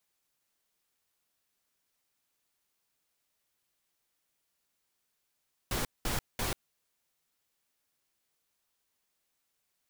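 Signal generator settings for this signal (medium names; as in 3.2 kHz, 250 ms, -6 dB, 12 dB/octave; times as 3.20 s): noise bursts pink, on 0.14 s, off 0.20 s, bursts 3, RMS -32 dBFS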